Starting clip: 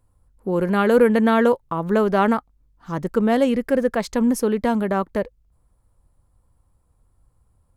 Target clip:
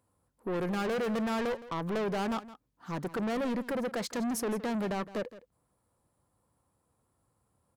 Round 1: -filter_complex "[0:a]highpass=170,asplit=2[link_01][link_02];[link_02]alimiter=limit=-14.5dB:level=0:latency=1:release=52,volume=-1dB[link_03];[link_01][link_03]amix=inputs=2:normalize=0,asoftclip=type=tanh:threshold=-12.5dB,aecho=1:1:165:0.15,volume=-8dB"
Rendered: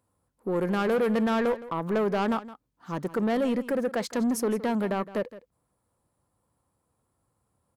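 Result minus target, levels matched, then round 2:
soft clipping: distortion −7 dB
-filter_complex "[0:a]highpass=170,asplit=2[link_01][link_02];[link_02]alimiter=limit=-14.5dB:level=0:latency=1:release=52,volume=-1dB[link_03];[link_01][link_03]amix=inputs=2:normalize=0,asoftclip=type=tanh:threshold=-21.5dB,aecho=1:1:165:0.15,volume=-8dB"

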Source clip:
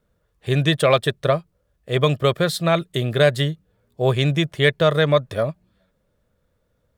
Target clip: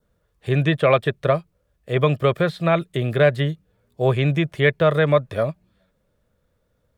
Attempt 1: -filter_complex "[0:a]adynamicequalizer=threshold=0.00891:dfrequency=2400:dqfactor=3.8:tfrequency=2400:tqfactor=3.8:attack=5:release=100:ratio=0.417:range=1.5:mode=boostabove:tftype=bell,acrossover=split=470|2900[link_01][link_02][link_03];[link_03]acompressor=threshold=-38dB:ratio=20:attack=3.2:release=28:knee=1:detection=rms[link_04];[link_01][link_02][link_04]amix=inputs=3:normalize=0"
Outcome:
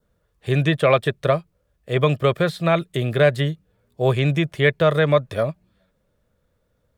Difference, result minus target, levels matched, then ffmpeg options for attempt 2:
downward compressor: peak gain reduction −8 dB
-filter_complex "[0:a]adynamicequalizer=threshold=0.00891:dfrequency=2400:dqfactor=3.8:tfrequency=2400:tqfactor=3.8:attack=5:release=100:ratio=0.417:range=1.5:mode=boostabove:tftype=bell,acrossover=split=470|2900[link_01][link_02][link_03];[link_03]acompressor=threshold=-46.5dB:ratio=20:attack=3.2:release=28:knee=1:detection=rms[link_04];[link_01][link_02][link_04]amix=inputs=3:normalize=0"

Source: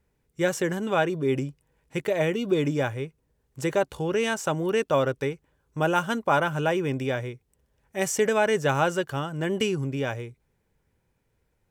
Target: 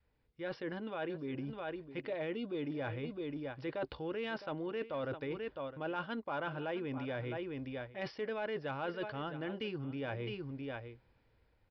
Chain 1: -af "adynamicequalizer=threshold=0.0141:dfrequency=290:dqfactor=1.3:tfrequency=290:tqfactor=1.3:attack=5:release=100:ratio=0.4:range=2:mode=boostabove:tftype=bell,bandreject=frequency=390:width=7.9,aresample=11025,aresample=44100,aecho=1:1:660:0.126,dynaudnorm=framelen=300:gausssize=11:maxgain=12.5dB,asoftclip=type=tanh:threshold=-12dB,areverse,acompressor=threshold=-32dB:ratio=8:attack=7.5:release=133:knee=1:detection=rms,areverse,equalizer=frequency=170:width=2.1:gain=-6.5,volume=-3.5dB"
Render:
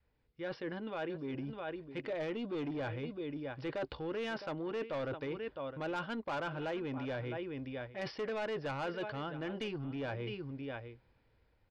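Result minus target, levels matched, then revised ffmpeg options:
soft clipping: distortion +16 dB
-af "adynamicequalizer=threshold=0.0141:dfrequency=290:dqfactor=1.3:tfrequency=290:tqfactor=1.3:attack=5:release=100:ratio=0.4:range=2:mode=boostabove:tftype=bell,bandreject=frequency=390:width=7.9,aresample=11025,aresample=44100,aecho=1:1:660:0.126,dynaudnorm=framelen=300:gausssize=11:maxgain=12.5dB,asoftclip=type=tanh:threshold=-0.5dB,areverse,acompressor=threshold=-32dB:ratio=8:attack=7.5:release=133:knee=1:detection=rms,areverse,equalizer=frequency=170:width=2.1:gain=-6.5,volume=-3.5dB"

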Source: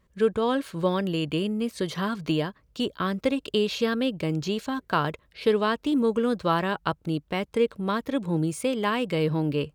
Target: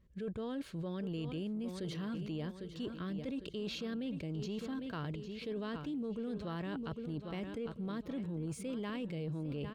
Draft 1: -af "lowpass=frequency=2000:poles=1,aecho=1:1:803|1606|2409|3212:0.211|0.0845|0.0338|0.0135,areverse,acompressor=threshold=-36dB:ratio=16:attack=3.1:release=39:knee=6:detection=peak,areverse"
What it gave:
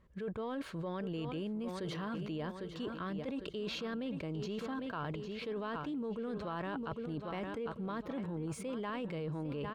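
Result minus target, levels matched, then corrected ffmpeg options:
1,000 Hz band +6.5 dB
-af "lowpass=frequency=2000:poles=1,equalizer=frequency=1000:width_type=o:width=2.2:gain=-12,aecho=1:1:803|1606|2409|3212:0.211|0.0845|0.0338|0.0135,areverse,acompressor=threshold=-36dB:ratio=16:attack=3.1:release=39:knee=6:detection=peak,areverse"

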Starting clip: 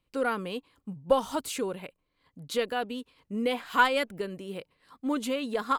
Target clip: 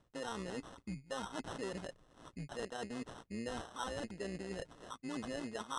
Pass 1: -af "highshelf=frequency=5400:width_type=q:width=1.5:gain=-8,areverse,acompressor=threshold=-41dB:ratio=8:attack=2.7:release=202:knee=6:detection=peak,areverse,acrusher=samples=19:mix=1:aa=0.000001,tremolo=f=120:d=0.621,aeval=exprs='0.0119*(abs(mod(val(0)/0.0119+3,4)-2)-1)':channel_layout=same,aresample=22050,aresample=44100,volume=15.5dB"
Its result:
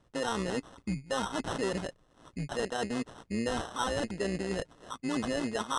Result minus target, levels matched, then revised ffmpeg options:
downward compressor: peak gain reduction −10 dB
-af "highshelf=frequency=5400:width_type=q:width=1.5:gain=-8,areverse,acompressor=threshold=-52.5dB:ratio=8:attack=2.7:release=202:knee=6:detection=peak,areverse,acrusher=samples=19:mix=1:aa=0.000001,tremolo=f=120:d=0.621,aeval=exprs='0.0119*(abs(mod(val(0)/0.0119+3,4)-2)-1)':channel_layout=same,aresample=22050,aresample=44100,volume=15.5dB"

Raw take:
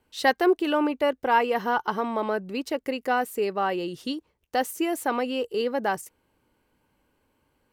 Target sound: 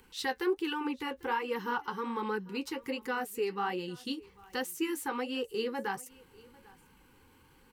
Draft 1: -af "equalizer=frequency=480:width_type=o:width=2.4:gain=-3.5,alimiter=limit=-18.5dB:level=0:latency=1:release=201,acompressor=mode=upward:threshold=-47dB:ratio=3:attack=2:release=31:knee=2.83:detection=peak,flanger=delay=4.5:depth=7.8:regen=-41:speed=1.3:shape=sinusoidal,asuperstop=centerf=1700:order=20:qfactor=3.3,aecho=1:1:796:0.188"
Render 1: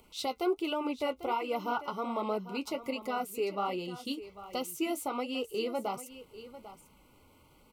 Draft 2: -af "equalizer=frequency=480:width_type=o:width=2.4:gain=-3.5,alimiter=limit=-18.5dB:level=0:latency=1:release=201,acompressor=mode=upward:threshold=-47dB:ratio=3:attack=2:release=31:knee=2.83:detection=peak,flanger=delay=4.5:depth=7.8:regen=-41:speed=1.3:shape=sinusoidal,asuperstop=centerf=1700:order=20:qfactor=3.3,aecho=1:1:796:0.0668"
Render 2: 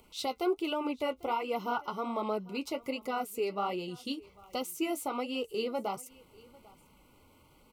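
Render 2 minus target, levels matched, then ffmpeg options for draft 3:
2,000 Hz band −5.5 dB
-af "equalizer=frequency=480:width_type=o:width=2.4:gain=-3.5,alimiter=limit=-18.5dB:level=0:latency=1:release=201,acompressor=mode=upward:threshold=-47dB:ratio=3:attack=2:release=31:knee=2.83:detection=peak,flanger=delay=4.5:depth=7.8:regen=-41:speed=1.3:shape=sinusoidal,asuperstop=centerf=640:order=20:qfactor=3.3,aecho=1:1:796:0.0668"

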